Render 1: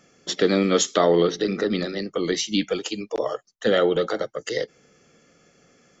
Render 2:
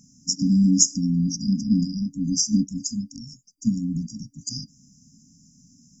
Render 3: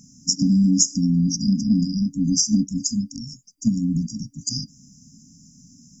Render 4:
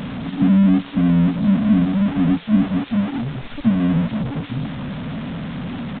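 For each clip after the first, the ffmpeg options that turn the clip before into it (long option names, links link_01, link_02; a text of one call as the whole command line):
ffmpeg -i in.wav -af "afftfilt=real='re*(1-between(b*sr/4096,290,4800))':imag='im*(1-between(b*sr/4096,290,4800))':win_size=4096:overlap=0.75,volume=7.5dB" out.wav
ffmpeg -i in.wav -af "acompressor=threshold=-21dB:ratio=2.5,volume=5dB" out.wav
ffmpeg -i in.wav -af "aeval=exprs='val(0)+0.5*0.0891*sgn(val(0))':channel_layout=same,aresample=8000,aresample=44100,volume=1.5dB" out.wav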